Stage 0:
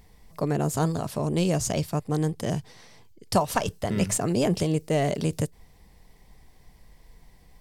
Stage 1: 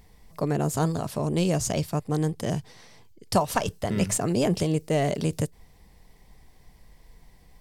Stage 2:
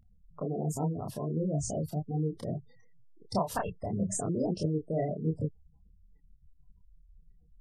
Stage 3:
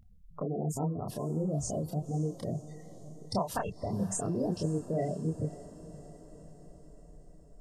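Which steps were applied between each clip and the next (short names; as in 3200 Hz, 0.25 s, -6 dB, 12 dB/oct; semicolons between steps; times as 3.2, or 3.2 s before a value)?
nothing audible
spectral gate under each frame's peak -15 dB strong; chorus voices 2, 1.4 Hz, delay 28 ms, depth 3 ms; gain -3.5 dB
in parallel at +2 dB: compressor, threshold -40 dBFS, peak gain reduction 15 dB; on the sum: diffused feedback echo 0.538 s, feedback 60%, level -16 dB; gain -3.5 dB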